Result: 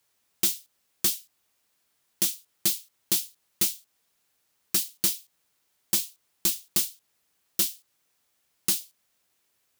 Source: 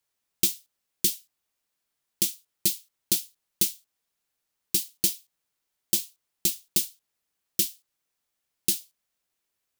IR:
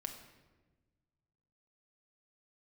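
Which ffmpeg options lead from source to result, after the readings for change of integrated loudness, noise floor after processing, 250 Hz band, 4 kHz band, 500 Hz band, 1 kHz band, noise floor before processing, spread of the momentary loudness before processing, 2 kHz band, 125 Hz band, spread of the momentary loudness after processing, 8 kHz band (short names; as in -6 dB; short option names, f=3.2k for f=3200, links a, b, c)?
0.0 dB, -73 dBFS, -1.0 dB, +0.5 dB, -1.0 dB, n/a, -82 dBFS, 11 LU, +3.0 dB, -2.0 dB, 8 LU, 0.0 dB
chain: -filter_complex "[0:a]highpass=48,asplit=2[a][b];[b]acompressor=threshold=-34dB:ratio=6,volume=0.5dB[c];[a][c]amix=inputs=2:normalize=0,asoftclip=type=tanh:threshold=-19dB,volume=2.5dB"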